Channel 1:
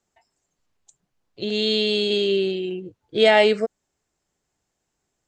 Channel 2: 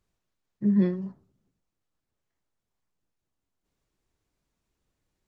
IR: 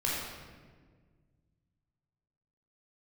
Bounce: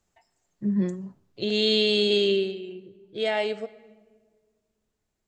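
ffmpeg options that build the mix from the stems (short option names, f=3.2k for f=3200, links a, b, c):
-filter_complex "[0:a]volume=-1dB,afade=t=out:st=2.28:d=0.27:silence=0.298538,asplit=2[a][b];[b]volume=-22dB[c];[1:a]volume=-2.5dB[d];[2:a]atrim=start_sample=2205[e];[c][e]afir=irnorm=-1:irlink=0[f];[a][d][f]amix=inputs=3:normalize=0"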